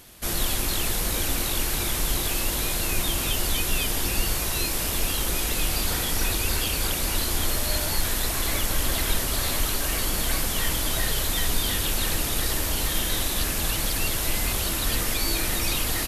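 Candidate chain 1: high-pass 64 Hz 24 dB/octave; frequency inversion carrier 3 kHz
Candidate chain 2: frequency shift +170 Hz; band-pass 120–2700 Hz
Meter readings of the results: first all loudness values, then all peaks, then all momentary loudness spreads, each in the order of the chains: -28.5 LUFS, -27.0 LUFS; -15.0 dBFS, -13.0 dBFS; 1 LU, 2 LU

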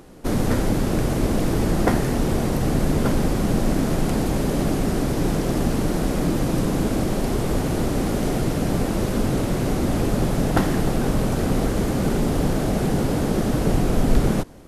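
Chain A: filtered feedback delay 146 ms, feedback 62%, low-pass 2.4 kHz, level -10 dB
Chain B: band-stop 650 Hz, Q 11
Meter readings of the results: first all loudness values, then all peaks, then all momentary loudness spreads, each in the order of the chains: -22.0 LUFS, -22.5 LUFS; -5.0 dBFS, -6.0 dBFS; 2 LU, 2 LU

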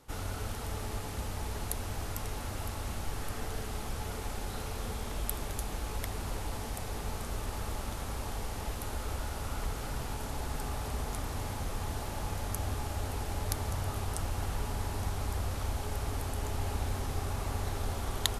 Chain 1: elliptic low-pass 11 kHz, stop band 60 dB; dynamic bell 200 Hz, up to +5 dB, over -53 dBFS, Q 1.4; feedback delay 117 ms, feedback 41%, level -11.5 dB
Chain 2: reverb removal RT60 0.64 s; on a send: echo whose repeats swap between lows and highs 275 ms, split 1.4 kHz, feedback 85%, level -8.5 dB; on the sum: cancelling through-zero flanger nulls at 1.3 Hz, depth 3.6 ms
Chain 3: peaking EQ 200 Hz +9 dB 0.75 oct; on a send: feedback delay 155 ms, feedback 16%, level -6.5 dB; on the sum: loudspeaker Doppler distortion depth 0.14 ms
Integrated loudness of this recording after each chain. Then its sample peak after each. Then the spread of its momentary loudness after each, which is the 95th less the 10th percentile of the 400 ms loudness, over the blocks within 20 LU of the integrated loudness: -37.0 LUFS, -42.5 LUFS, -35.5 LUFS; -6.5 dBFS, -12.5 dBFS, -8.0 dBFS; 3 LU, 4 LU, 3 LU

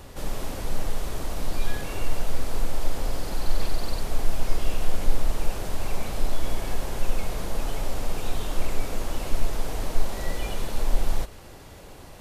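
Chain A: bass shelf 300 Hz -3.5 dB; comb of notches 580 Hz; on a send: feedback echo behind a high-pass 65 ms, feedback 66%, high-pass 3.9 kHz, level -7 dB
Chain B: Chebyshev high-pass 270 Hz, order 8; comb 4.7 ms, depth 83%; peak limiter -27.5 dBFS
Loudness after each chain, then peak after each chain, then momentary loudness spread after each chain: -36.5 LUFS, -36.5 LUFS; -19.0 dBFS, -27.5 dBFS; 2 LU, 1 LU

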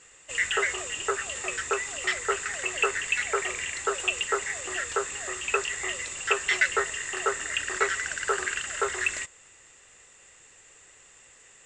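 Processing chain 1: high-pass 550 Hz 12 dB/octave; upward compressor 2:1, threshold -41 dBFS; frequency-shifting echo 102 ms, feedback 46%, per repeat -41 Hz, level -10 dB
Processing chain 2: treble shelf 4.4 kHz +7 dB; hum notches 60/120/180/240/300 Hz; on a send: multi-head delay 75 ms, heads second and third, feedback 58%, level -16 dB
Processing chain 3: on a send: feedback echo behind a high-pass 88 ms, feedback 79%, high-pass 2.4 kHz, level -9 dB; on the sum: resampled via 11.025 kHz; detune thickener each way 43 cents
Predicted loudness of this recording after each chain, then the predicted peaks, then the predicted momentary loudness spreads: -27.5 LUFS, -25.5 LUFS, -31.5 LUFS; -9.5 dBFS, -8.0 dBFS, -10.5 dBFS; 22 LU, 5 LU, 8 LU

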